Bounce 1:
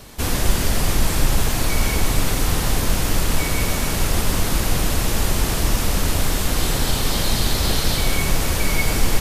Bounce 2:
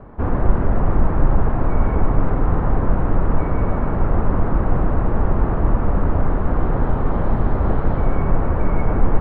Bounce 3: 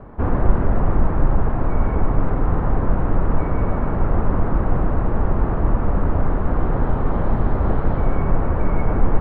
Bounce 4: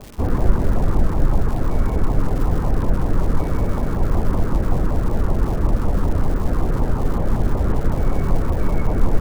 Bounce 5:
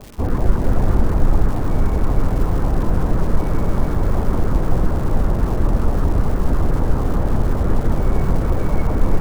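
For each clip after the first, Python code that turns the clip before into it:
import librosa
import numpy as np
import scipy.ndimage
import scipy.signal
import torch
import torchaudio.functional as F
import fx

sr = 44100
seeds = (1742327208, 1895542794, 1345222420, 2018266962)

y1 = scipy.signal.sosfilt(scipy.signal.butter(4, 1300.0, 'lowpass', fs=sr, output='sos'), x)
y1 = y1 * librosa.db_to_amplitude(3.0)
y2 = fx.rider(y1, sr, range_db=10, speed_s=2.0)
y2 = y2 * librosa.db_to_amplitude(-1.0)
y3 = fx.filter_lfo_notch(y2, sr, shape='saw_down', hz=5.3, low_hz=560.0, high_hz=1800.0, q=1.7)
y3 = fx.dmg_crackle(y3, sr, seeds[0], per_s=350.0, level_db=-30.0)
y4 = y3 + 10.0 ** (-4.5 / 20.0) * np.pad(y3, (int(448 * sr / 1000.0), 0))[:len(y3)]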